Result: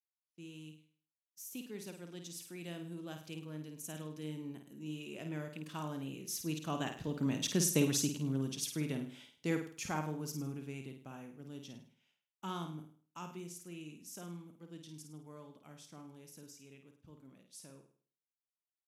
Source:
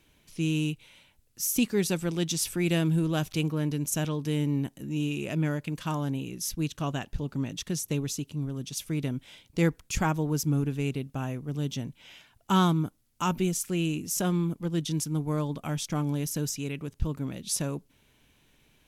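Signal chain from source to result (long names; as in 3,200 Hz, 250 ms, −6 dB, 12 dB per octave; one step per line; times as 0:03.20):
source passing by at 0:07.78, 7 m/s, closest 3.8 metres
downward expander −59 dBFS
high-pass filter 170 Hz 12 dB per octave
on a send: flutter between parallel walls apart 8.9 metres, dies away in 0.46 s
on the sum: level +1.5 dB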